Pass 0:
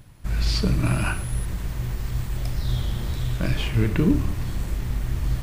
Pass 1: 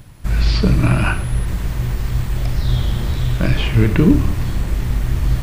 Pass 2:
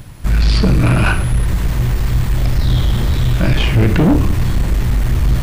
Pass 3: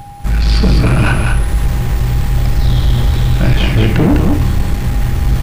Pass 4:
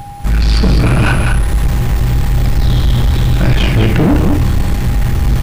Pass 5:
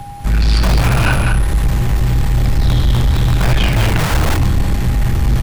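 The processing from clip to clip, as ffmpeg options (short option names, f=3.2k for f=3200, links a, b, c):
-filter_complex "[0:a]acrossover=split=4200[a][b];[b]acompressor=threshold=-46dB:ratio=4:attack=1:release=60[c];[a][c]amix=inputs=2:normalize=0,volume=7.5dB"
-af "asoftclip=type=tanh:threshold=-13.5dB,volume=6.5dB"
-af "aeval=exprs='val(0)+0.0251*sin(2*PI*810*n/s)':c=same,aecho=1:1:202:0.596"
-af "aeval=exprs='0.75*(cos(1*acos(clip(val(0)/0.75,-1,1)))-cos(1*PI/2))+0.0668*(cos(5*acos(clip(val(0)/0.75,-1,1)))-cos(5*PI/2))':c=same"
-filter_complex "[0:a]aresample=32000,aresample=44100,acrossover=split=160|710|4700[a][b][c][d];[b]aeval=exprs='(mod(5.31*val(0)+1,2)-1)/5.31':c=same[e];[a][e][c][d]amix=inputs=4:normalize=0,volume=-1.5dB"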